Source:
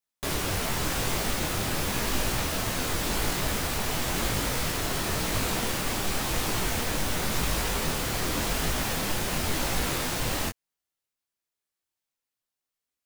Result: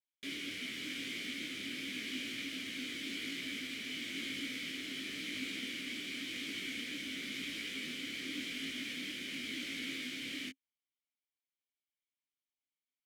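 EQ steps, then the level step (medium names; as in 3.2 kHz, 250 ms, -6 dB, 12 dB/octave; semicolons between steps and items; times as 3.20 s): vowel filter i; tilt EQ +2.5 dB/octave; +1.5 dB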